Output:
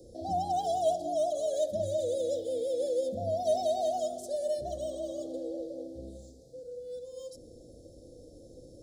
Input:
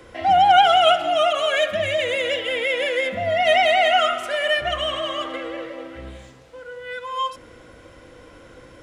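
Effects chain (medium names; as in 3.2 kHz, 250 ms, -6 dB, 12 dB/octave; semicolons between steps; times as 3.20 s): inverse Chebyshev band-stop 960–2900 Hz, stop band 40 dB; de-hum 65.06 Hz, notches 3; trim -4.5 dB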